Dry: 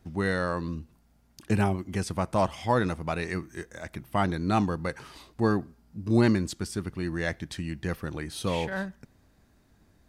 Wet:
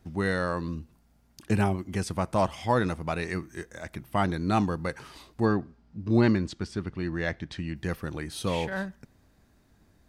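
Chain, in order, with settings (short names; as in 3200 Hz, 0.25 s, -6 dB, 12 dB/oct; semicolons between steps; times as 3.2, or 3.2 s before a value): 5.45–7.76 LPF 4600 Hz 12 dB/oct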